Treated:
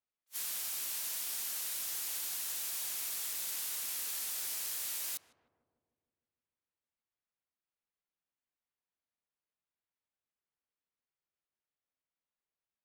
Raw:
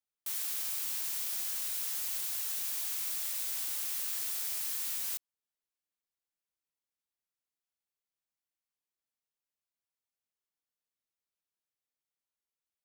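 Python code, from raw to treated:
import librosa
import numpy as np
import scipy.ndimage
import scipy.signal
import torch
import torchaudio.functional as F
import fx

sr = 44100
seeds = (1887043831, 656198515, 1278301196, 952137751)

y = fx.echo_filtered(x, sr, ms=154, feedback_pct=70, hz=970.0, wet_db=-12.0)
y = fx.env_lowpass(y, sr, base_hz=2700.0, full_db=-37.5)
y = fx.attack_slew(y, sr, db_per_s=570.0)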